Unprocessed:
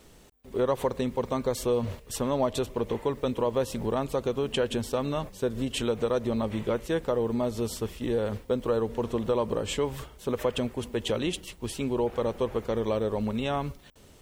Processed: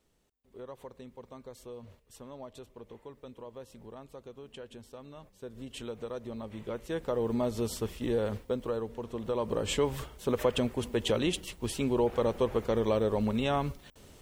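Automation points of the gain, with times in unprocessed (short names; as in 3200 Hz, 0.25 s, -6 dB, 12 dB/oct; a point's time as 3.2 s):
5.15 s -19 dB
5.74 s -12 dB
6.5 s -12 dB
7.31 s -2 dB
8.25 s -2 dB
9.06 s -10 dB
9.7 s 0 dB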